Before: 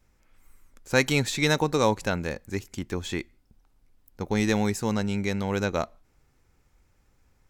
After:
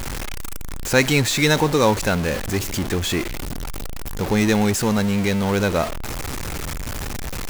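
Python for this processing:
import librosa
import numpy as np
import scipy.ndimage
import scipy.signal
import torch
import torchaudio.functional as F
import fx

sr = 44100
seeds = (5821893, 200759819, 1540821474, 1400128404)

p1 = x + 0.5 * 10.0 ** (-25.0 / 20.0) * np.sign(x)
p2 = fx.quant_companded(p1, sr, bits=4)
p3 = p1 + (p2 * librosa.db_to_amplitude(-11.0))
y = p3 * librosa.db_to_amplitude(1.5)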